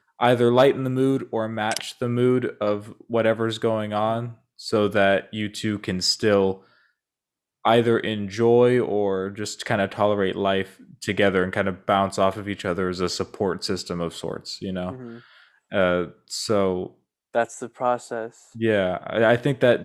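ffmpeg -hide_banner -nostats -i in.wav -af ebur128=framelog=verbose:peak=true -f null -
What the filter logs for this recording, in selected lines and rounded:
Integrated loudness:
  I:         -23.1 LUFS
  Threshold: -33.4 LUFS
Loudness range:
  LRA:         5.2 LU
  Threshold: -43.9 LUFS
  LRA low:   -27.0 LUFS
  LRA high:  -21.9 LUFS
True peak:
  Peak:       -3.9 dBFS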